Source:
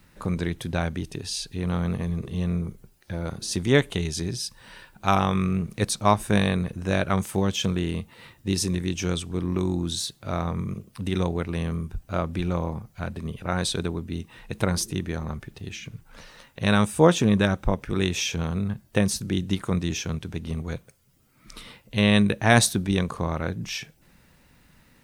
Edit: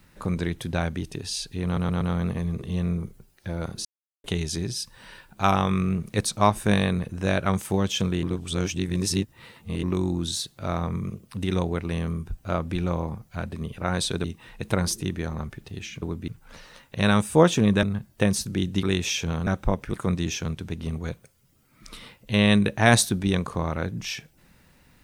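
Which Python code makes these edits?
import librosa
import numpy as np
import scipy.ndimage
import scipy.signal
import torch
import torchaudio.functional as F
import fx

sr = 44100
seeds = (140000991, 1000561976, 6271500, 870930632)

y = fx.edit(x, sr, fx.stutter(start_s=1.65, slice_s=0.12, count=4),
    fx.silence(start_s=3.49, length_s=0.39),
    fx.reverse_span(start_s=7.87, length_s=1.6),
    fx.move(start_s=13.88, length_s=0.26, to_s=15.92),
    fx.swap(start_s=17.47, length_s=0.47, other_s=18.58, other_length_s=1.0), tone=tone)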